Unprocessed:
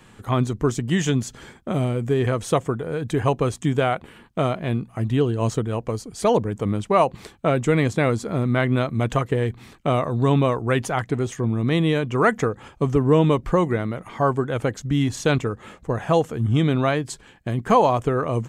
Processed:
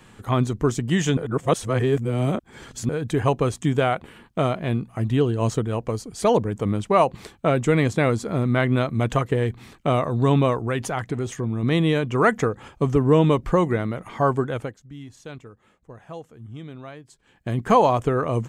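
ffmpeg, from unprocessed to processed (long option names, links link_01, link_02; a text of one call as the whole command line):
ffmpeg -i in.wav -filter_complex "[0:a]asettb=1/sr,asplit=3[link_01][link_02][link_03];[link_01]atrim=end=10.564[link_04];[link_02]atrim=start=10.56:end=11.63,asetpts=PTS-STARTPTS,afade=type=in:duration=0.004:curve=qsin,afade=type=out:start_time=1.066:duration=0.004:curve=qsin,acompressor=threshold=-23dB:ratio=2:attack=3.2:release=140:knee=1:detection=peak[link_05];[link_03]atrim=start=11.626[link_06];[link_04][link_05]acrossfade=duration=0.004:curve1=hsin:curve2=qsin[link_07];[link_07][link_06]acrossfade=duration=0.004:curve1=qsin:curve2=hsin,asplit=5[link_08][link_09][link_10][link_11][link_12];[link_08]atrim=end=1.172[link_13];[link_09]atrim=start=1.168:end=2.892,asetpts=PTS-STARTPTS,areverse[link_14];[link_10]atrim=start=2.888:end=14.76,asetpts=PTS-STARTPTS,afade=type=out:start_time=11.562:duration=0.31:silence=0.11885[link_15];[link_11]atrim=start=14.76:end=17.22,asetpts=PTS-STARTPTS,volume=-18.5dB[link_16];[link_12]atrim=start=17.22,asetpts=PTS-STARTPTS,afade=type=in:duration=0.31:silence=0.11885[link_17];[link_13][link_14]acrossfade=duration=0.004:curve1=hsin:curve2=hsin[link_18];[link_15][link_16][link_17]concat=n=3:v=0:a=1[link_19];[link_18][link_19]acrossfade=duration=0.004:curve1=hsin:curve2=hsin" out.wav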